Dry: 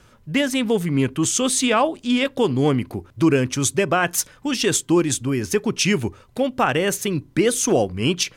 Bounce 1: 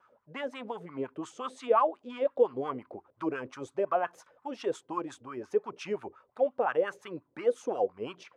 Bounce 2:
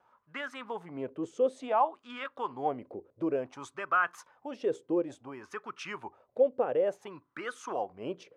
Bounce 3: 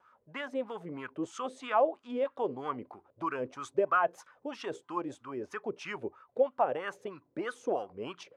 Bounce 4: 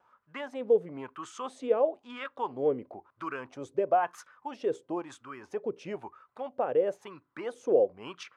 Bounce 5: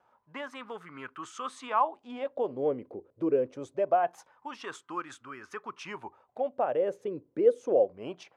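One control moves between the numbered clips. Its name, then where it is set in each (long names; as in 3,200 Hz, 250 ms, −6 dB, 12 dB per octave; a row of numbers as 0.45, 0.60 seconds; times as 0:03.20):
LFO wah, speed: 5.7, 0.57, 3.1, 1, 0.24 Hertz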